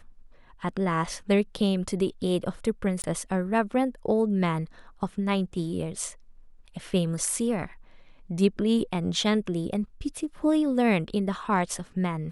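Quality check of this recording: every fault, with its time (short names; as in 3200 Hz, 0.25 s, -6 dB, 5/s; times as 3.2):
3.02–3.04 gap 19 ms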